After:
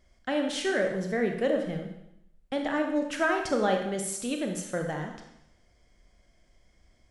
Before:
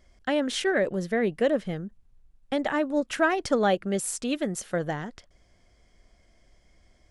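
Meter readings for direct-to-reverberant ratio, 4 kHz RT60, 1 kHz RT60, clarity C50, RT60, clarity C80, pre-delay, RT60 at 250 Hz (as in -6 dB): 3.0 dB, 0.80 s, 0.80 s, 5.5 dB, 0.80 s, 8.0 dB, 26 ms, 0.80 s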